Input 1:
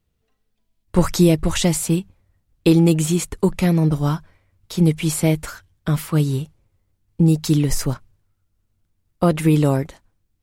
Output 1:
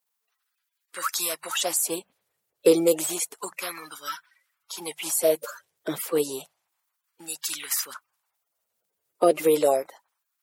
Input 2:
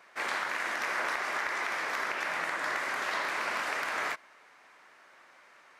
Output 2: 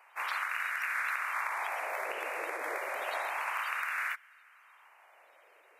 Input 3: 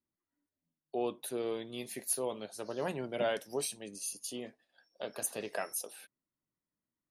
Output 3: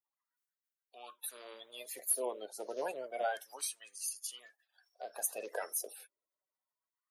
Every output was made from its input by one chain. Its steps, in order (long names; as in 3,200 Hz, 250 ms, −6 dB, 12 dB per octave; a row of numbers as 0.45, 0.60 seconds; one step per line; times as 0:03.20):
spectral magnitudes quantised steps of 30 dB
auto-filter high-pass sine 0.3 Hz 430–1,500 Hz
high-shelf EQ 7,800 Hz +11 dB
level −5.5 dB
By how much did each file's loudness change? −6.5, −2.5, −1.5 LU